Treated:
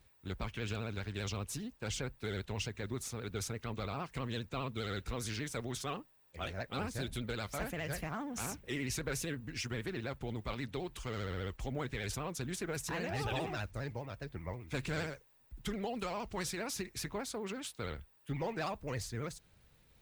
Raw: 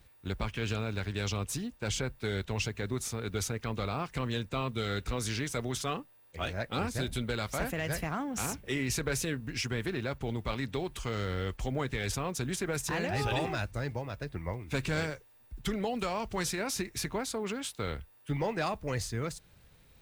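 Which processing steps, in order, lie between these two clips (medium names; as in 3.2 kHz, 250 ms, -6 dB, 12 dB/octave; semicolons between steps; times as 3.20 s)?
vibrato 15 Hz 98 cents; trim -5.5 dB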